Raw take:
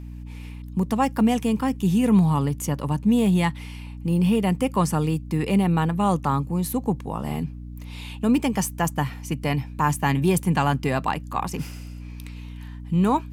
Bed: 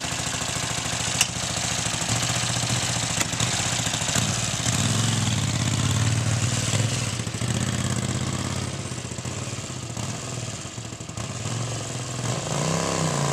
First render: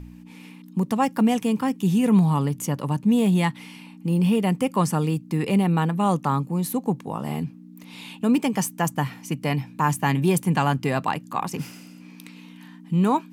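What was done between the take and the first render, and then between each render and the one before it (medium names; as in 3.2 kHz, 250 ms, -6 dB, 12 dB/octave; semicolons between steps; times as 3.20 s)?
de-hum 60 Hz, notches 2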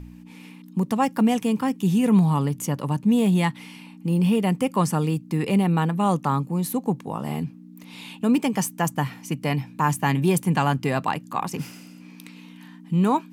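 no audible change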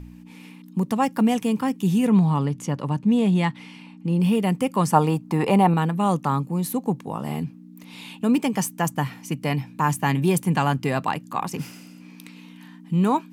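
2.07–4.20 s: distance through air 61 m; 4.93–5.74 s: peaking EQ 850 Hz +14.5 dB 1.3 oct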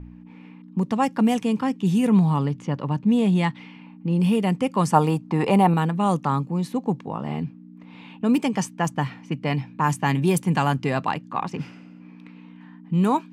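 level-controlled noise filter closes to 1.6 kHz, open at -15 dBFS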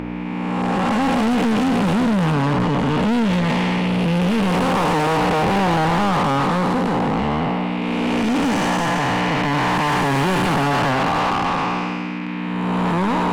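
spectral blur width 587 ms; overdrive pedal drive 35 dB, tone 2.7 kHz, clips at -11 dBFS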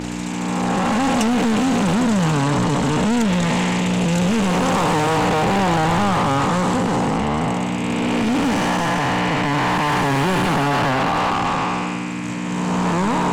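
add bed -8 dB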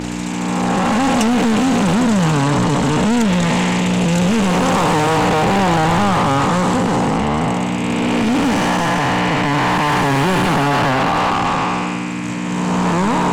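trim +3 dB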